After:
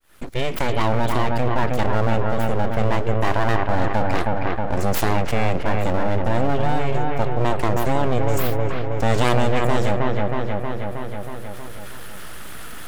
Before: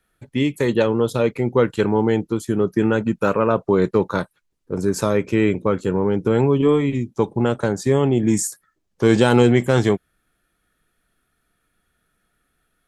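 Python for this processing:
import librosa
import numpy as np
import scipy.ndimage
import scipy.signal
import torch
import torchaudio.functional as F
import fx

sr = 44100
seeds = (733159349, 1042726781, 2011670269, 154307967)

p1 = fx.fade_in_head(x, sr, length_s=0.96)
p2 = np.abs(p1)
p3 = p2 + fx.echo_wet_lowpass(p2, sr, ms=317, feedback_pct=36, hz=2600.0, wet_db=-5, dry=0)
p4 = fx.env_flatten(p3, sr, amount_pct=70)
y = p4 * 10.0 ** (-5.0 / 20.0)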